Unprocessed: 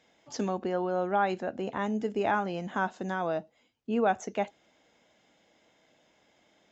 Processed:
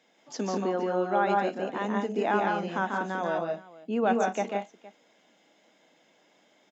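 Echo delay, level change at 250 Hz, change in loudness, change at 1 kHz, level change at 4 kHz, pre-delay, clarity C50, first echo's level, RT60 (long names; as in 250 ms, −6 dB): 142 ms, +2.0 dB, +2.5 dB, +2.5 dB, +2.5 dB, no reverb audible, no reverb audible, −4.0 dB, no reverb audible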